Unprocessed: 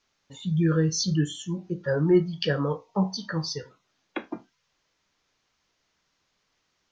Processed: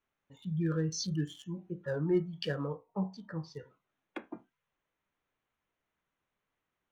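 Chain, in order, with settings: local Wiener filter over 9 samples; 2.67–3.55 s: low-pass 1.1 kHz 6 dB/octave; trim -9 dB

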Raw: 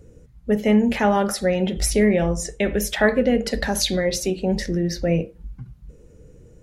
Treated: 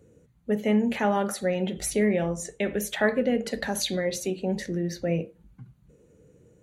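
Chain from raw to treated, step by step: high-pass 120 Hz 12 dB/octave; band-stop 5.2 kHz, Q 5.3; trim -5.5 dB

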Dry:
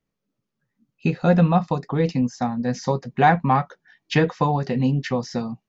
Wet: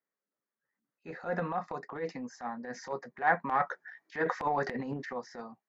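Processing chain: high-pass 430 Hz 12 dB/octave; resonant high shelf 2.3 kHz -7 dB, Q 3; transient shaper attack -12 dB, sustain +3 dB, from 3.59 s sustain +11 dB, from 5.03 s sustain -1 dB; trim -7.5 dB

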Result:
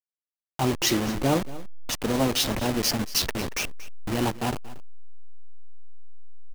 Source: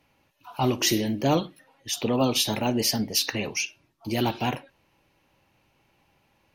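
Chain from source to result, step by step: send-on-delta sampling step -23 dBFS; delay 231 ms -17.5 dB

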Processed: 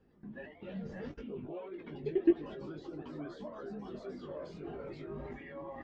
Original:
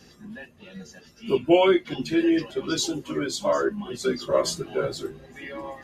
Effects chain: recorder AGC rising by 12 dB/s; gate -41 dBFS, range -7 dB; 0.81–3.15 s: treble shelf 4.3 kHz -10 dB; peak limiter -18 dBFS, peak gain reduction 11 dB; level held to a coarse grid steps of 22 dB; flange 1.7 Hz, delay 1.9 ms, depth 5.5 ms, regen +42%; ever faster or slower copies 128 ms, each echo +2 st, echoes 2, each echo -6 dB; tape spacing loss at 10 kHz 38 dB; doubling 20 ms -8 dB; tape noise reduction on one side only decoder only; trim +5 dB

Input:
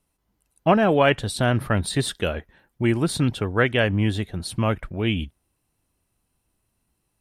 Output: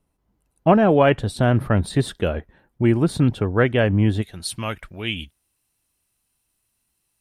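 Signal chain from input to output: tilt shelf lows +5 dB, about 1.5 kHz, from 4.21 s lows -6.5 dB; trim -1 dB

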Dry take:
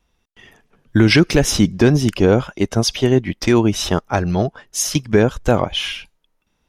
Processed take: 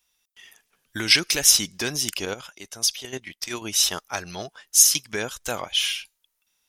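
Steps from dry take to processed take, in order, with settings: 2.25–3.62 s: level held to a coarse grid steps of 12 dB; pre-emphasis filter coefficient 0.97; trim +7 dB

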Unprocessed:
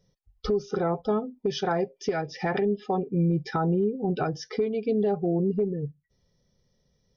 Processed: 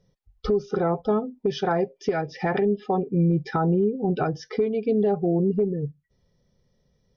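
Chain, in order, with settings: low-pass 3 kHz 6 dB/octave; trim +3 dB

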